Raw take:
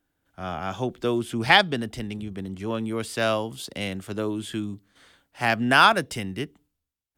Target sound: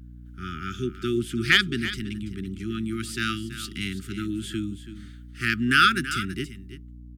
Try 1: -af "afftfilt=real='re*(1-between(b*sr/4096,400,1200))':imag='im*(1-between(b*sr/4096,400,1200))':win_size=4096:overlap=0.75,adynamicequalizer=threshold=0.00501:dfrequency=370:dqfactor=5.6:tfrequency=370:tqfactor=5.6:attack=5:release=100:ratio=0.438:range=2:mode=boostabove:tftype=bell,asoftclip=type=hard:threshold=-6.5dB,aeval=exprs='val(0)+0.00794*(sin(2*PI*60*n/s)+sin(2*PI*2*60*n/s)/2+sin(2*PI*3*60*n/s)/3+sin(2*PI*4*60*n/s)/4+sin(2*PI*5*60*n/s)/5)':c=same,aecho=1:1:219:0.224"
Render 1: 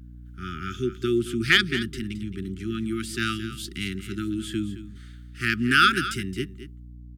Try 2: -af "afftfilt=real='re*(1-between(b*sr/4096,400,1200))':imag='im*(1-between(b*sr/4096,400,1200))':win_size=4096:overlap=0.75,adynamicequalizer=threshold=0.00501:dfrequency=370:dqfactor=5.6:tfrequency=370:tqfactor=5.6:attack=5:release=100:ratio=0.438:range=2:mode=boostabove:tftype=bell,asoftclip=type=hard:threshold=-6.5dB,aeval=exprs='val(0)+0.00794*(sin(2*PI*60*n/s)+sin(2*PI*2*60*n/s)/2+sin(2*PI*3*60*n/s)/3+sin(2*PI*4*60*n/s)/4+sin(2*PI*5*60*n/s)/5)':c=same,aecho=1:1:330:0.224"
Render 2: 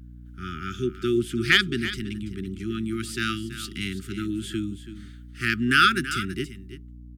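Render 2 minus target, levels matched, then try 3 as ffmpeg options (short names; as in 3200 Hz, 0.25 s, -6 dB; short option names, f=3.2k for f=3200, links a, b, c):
500 Hz band +3.0 dB
-af "afftfilt=real='re*(1-between(b*sr/4096,400,1200))':imag='im*(1-between(b*sr/4096,400,1200))':win_size=4096:overlap=0.75,asoftclip=type=hard:threshold=-6.5dB,aeval=exprs='val(0)+0.00794*(sin(2*PI*60*n/s)+sin(2*PI*2*60*n/s)/2+sin(2*PI*3*60*n/s)/3+sin(2*PI*4*60*n/s)/4+sin(2*PI*5*60*n/s)/5)':c=same,aecho=1:1:330:0.224"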